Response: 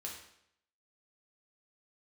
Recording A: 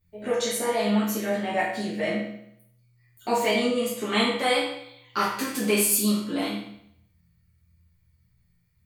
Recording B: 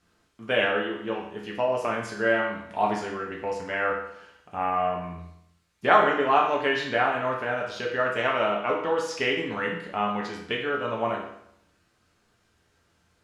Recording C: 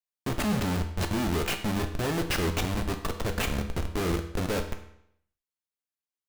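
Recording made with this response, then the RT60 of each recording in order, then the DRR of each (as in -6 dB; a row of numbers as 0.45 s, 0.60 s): B; 0.70 s, 0.70 s, 0.70 s; -8.5 dB, -2.0 dB, 5.0 dB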